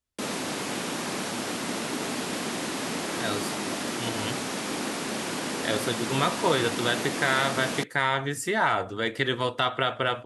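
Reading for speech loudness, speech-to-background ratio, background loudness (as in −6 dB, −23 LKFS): −27.5 LKFS, 3.0 dB, −30.5 LKFS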